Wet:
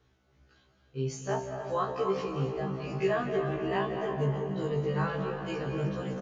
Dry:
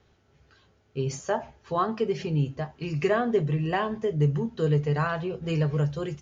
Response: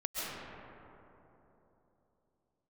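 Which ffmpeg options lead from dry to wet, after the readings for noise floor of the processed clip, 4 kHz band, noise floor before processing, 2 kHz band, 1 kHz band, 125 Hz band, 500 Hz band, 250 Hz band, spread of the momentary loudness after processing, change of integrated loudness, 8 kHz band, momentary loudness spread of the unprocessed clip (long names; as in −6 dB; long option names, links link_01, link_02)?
−67 dBFS, −3.5 dB, −64 dBFS, −4.0 dB, −3.0 dB, −7.0 dB, −3.0 dB, −5.0 dB, 5 LU, −4.5 dB, can't be measured, 7 LU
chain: -filter_complex "[0:a]asplit=8[link_01][link_02][link_03][link_04][link_05][link_06][link_07][link_08];[link_02]adelay=290,afreqshift=46,volume=-15dB[link_09];[link_03]adelay=580,afreqshift=92,volume=-19dB[link_10];[link_04]adelay=870,afreqshift=138,volume=-23dB[link_11];[link_05]adelay=1160,afreqshift=184,volume=-27dB[link_12];[link_06]adelay=1450,afreqshift=230,volume=-31.1dB[link_13];[link_07]adelay=1740,afreqshift=276,volume=-35.1dB[link_14];[link_08]adelay=2030,afreqshift=322,volume=-39.1dB[link_15];[link_01][link_09][link_10][link_11][link_12][link_13][link_14][link_15]amix=inputs=8:normalize=0,asplit=2[link_16][link_17];[1:a]atrim=start_sample=2205,adelay=41[link_18];[link_17][link_18]afir=irnorm=-1:irlink=0,volume=-8.5dB[link_19];[link_16][link_19]amix=inputs=2:normalize=0,afftfilt=real='re*1.73*eq(mod(b,3),0)':imag='im*1.73*eq(mod(b,3),0)':win_size=2048:overlap=0.75,volume=-3dB"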